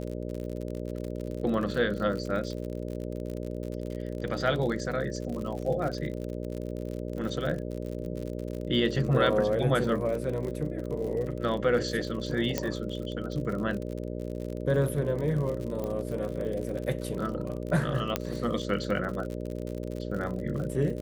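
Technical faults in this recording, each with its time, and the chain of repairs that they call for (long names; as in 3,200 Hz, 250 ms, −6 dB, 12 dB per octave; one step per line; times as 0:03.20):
mains buzz 60 Hz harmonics 10 −35 dBFS
surface crackle 57 per second −34 dBFS
0:12.58: click −12 dBFS
0:15.84: click −22 dBFS
0:18.16: click −11 dBFS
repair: click removal
hum removal 60 Hz, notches 10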